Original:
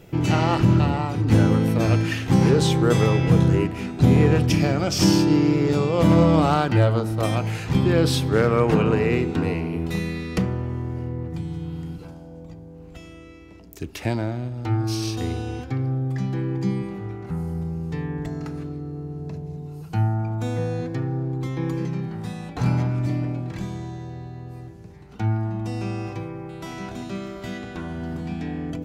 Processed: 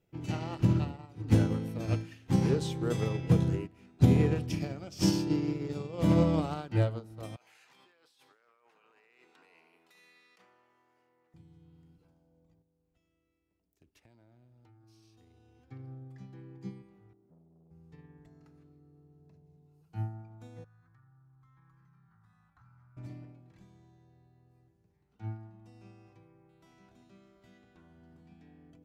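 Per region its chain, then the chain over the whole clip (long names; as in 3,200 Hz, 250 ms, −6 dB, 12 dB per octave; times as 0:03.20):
0:07.36–0:11.34: high-pass filter 910 Hz + compressor whose output falls as the input rises −37 dBFS
0:12.62–0:15.67: noise gate −37 dBFS, range −8 dB + downward compressor 10 to 1, threshold −30 dBFS
0:17.13–0:17.71: resonant band-pass 280 Hz, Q 1.3 + saturating transformer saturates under 300 Hz
0:20.64–0:22.97: drawn EQ curve 110 Hz 0 dB, 460 Hz −26 dB, 1,300 Hz +10 dB, 2,500 Hz −11 dB + downward compressor 3 to 1, threshold −33 dBFS
whole clip: dynamic equaliser 1,300 Hz, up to −4 dB, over −34 dBFS, Q 0.78; expander for the loud parts 2.5 to 1, over −28 dBFS; level −3 dB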